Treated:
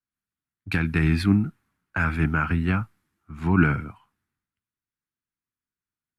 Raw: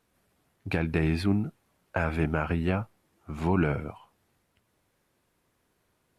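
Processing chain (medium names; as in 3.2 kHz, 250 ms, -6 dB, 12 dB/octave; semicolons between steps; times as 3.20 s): FFT filter 270 Hz 0 dB, 560 Hz -15 dB, 1.4 kHz +4 dB, 3 kHz -3 dB; three bands expanded up and down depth 70%; trim +5 dB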